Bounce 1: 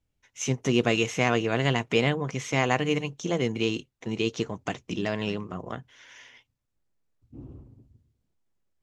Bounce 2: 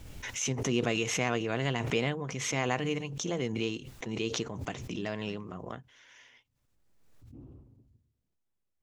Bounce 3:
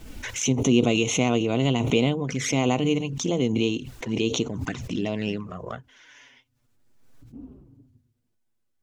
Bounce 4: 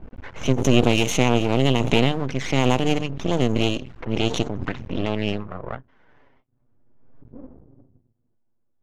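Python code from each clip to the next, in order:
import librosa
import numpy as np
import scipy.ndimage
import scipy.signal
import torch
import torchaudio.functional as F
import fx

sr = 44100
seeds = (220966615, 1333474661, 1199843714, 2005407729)

y1 = fx.pre_swell(x, sr, db_per_s=37.0)
y1 = y1 * 10.0 ** (-7.0 / 20.0)
y2 = fx.small_body(y1, sr, hz=(260.0, 1500.0), ring_ms=40, db=6)
y2 = fx.env_flanger(y2, sr, rest_ms=8.8, full_db=-29.0)
y2 = y2 * 10.0 ** (8.0 / 20.0)
y3 = np.maximum(y2, 0.0)
y3 = fx.env_lowpass(y3, sr, base_hz=880.0, full_db=-20.0)
y3 = y3 * 10.0 ** (5.5 / 20.0)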